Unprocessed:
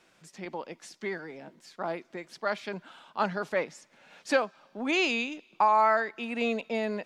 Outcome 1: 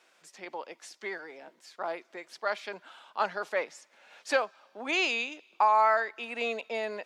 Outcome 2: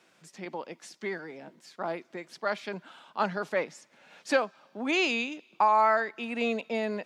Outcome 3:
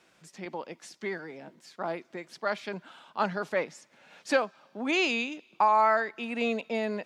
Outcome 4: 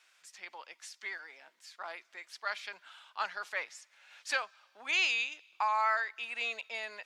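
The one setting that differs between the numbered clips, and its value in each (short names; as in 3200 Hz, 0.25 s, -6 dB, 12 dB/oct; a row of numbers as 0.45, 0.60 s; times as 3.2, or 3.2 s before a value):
HPF, cutoff: 460, 120, 43, 1400 Hz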